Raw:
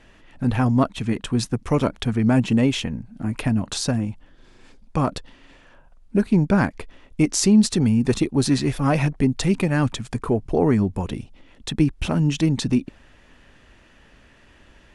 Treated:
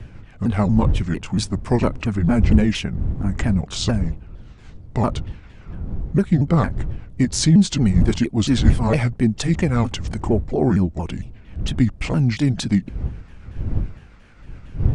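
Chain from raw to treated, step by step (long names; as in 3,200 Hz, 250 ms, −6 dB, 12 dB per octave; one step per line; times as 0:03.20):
pitch shifter swept by a sawtooth −5.5 semitones, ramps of 229 ms
wind on the microphone 84 Hz −27 dBFS
level +2 dB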